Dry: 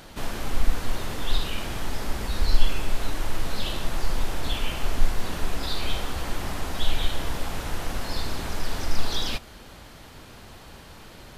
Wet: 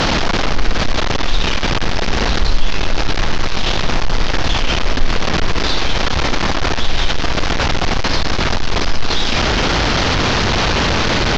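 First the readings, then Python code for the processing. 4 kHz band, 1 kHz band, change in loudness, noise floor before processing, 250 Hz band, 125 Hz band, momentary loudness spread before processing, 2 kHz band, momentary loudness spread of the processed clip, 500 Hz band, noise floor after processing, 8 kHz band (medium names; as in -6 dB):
+14.5 dB, +16.0 dB, +13.5 dB, -46 dBFS, +15.0 dB, +12.5 dB, 17 LU, +17.0 dB, 5 LU, +15.5 dB, -16 dBFS, +11.5 dB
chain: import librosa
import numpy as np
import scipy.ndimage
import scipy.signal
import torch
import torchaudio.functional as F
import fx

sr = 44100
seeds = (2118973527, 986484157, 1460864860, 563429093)

y = fx.delta_mod(x, sr, bps=32000, step_db=-20.5)
y = fx.air_absorb(y, sr, metres=56.0)
y = fx.env_flatten(y, sr, amount_pct=50)
y = y * librosa.db_to_amplitude(2.0)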